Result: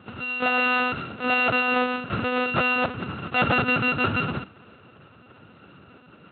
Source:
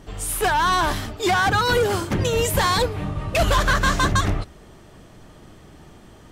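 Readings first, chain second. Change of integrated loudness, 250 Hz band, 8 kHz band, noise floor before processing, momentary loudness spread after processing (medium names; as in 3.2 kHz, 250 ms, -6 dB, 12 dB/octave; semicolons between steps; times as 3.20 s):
-2.5 dB, 0.0 dB, under -40 dB, -47 dBFS, 8 LU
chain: sorted samples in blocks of 32 samples; monotone LPC vocoder at 8 kHz 250 Hz; high-pass 100 Hz 24 dB/octave; trim -1.5 dB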